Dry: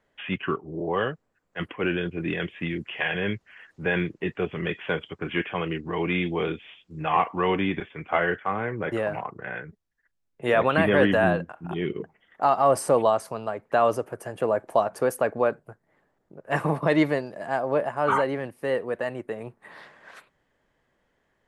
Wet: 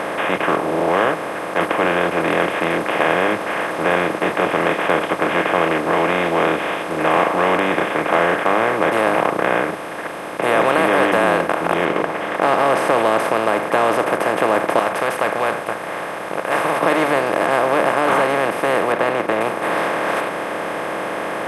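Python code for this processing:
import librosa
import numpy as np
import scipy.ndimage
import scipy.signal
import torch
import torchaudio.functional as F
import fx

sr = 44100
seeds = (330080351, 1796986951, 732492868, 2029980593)

y = fx.lowpass(x, sr, hz=fx.line((11.84, 3000.0), (13.04, 7700.0)), slope=12, at=(11.84, 13.04), fade=0.02)
y = fx.tone_stack(y, sr, knobs='10-0-10', at=(14.79, 16.81))
y = fx.air_absorb(y, sr, metres=270.0, at=(18.92, 19.41))
y = fx.bin_compress(y, sr, power=0.2)
y = fx.low_shelf(y, sr, hz=140.0, db=-12.0)
y = fx.hum_notches(y, sr, base_hz=50, count=4)
y = y * 10.0 ** (-2.0 / 20.0)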